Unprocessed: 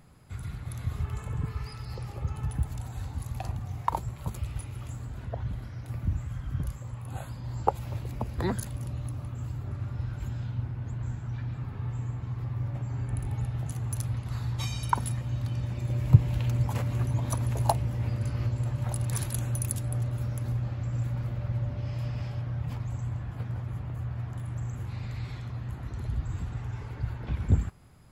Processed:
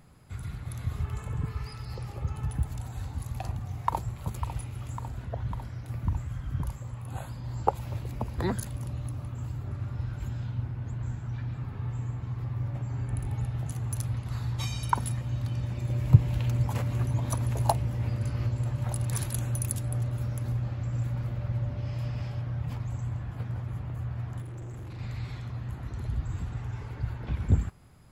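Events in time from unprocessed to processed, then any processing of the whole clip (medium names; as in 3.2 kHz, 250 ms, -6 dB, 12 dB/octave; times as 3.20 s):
3.27–4.12 s: echo throw 550 ms, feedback 75%, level -11.5 dB
24.42–24.99 s: hard clipper -37.5 dBFS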